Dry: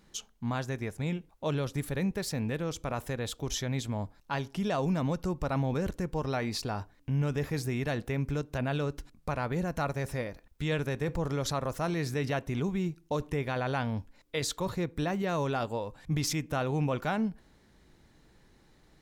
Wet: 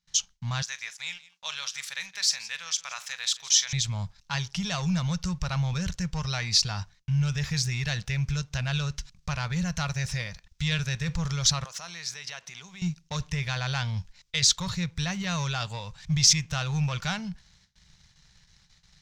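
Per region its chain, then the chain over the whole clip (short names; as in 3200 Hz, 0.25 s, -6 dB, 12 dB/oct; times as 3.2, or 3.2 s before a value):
0.62–3.73 HPF 1100 Hz + tapped delay 42/169 ms -15/-17 dB
11.64–12.82 compressor 12:1, threshold -34 dBFS + HPF 390 Hz
whole clip: gate with hold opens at -51 dBFS; sample leveller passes 1; EQ curve 180 Hz 0 dB, 270 Hz -25 dB, 950 Hz -6 dB, 6000 Hz +12 dB, 11000 Hz -9 dB; gain +2 dB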